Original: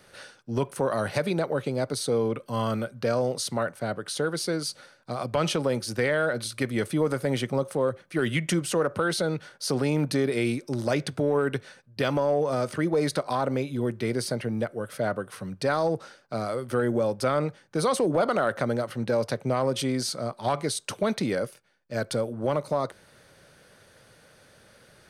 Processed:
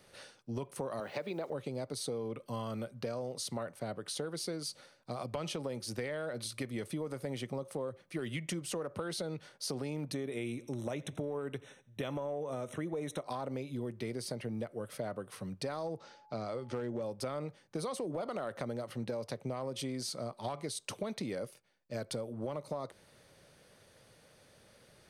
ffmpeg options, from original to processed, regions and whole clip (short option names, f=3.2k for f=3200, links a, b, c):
-filter_complex "[0:a]asettb=1/sr,asplit=3[a][b][c];[a]atrim=end=1.004[d];[b]atrim=start=1:end=1.5,asetpts=PTS-STARTPTS,afade=t=in:d=0.004:c=qsin,afade=t=out:st=0.496:d=0.004:c=qsin,highpass=240,lowpass=3.7k,acrusher=bits=8:mix=0:aa=0.5[e];[c]atrim=start=1.496[f];[d][e]acrossfade=d=0.004:c1=hsin:c2=qsin[g];[g][f]acrossfade=d=0.004:c1=qsin:c2=hsin,asettb=1/sr,asplit=3[h][i][j];[h]atrim=end=10.134[k];[i]atrim=start=10.13:end=13.24,asetpts=PTS-STARTPTS,afade=t=in:d=0.004:c=qsin,afade=t=out:st=3.106:d=0.004:c=qsin,asuperstop=centerf=4700:order=20:qfactor=3.5,aecho=1:1:85|170|255:0.0668|0.0294|0.0129,atrim=end_sample=137151[l];[j]atrim=start=13.236[m];[k][l]acrossfade=d=0.004:c1=hsin:c2=qsin[n];[n][m]acrossfade=d=0.004:c1=qsin:c2=hsin,asettb=1/sr,asplit=3[o][p][q];[o]atrim=end=15.974[r];[p]atrim=start=15.97:end=17.02,asetpts=PTS-STARTPTS,afade=t=in:d=0.004:c=qsin,afade=t=out:st=1.046:d=0.004:c=qsin,lowpass=f=6.8k:w=0.5412,lowpass=f=6.8k:w=1.3066,asoftclip=type=hard:threshold=-18dB,aeval=exprs='val(0)+0.00224*sin(2*PI*850*n/s)':c=same[s];[q]atrim=start=17.016[t];[r][s]acrossfade=d=0.004:c1=hsin:c2=qsin[u];[u][t]acrossfade=d=0.004:c1=qsin:c2=hsin,equalizer=f=1.5k:w=3.5:g=-6.5,acompressor=threshold=-29dB:ratio=6,volume=-5.5dB"